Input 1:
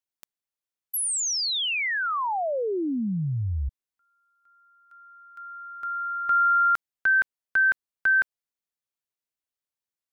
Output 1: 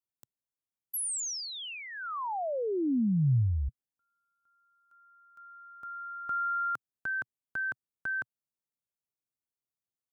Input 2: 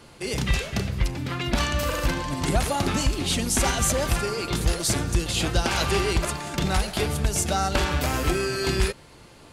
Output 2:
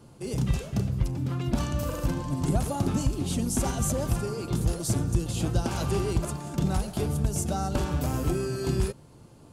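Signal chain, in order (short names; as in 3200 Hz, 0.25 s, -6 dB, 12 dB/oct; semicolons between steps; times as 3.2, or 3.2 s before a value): graphic EQ 125/250/2000/4000 Hz +8/+4/-10/-6 dB; gain -5.5 dB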